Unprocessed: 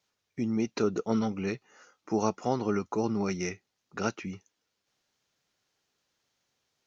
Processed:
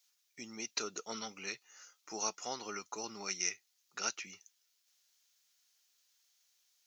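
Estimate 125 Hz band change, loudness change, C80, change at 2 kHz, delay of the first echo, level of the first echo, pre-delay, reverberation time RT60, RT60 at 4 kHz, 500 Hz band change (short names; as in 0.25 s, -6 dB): -24.5 dB, -8.5 dB, none, -2.5 dB, none, none, none, none, none, -15.5 dB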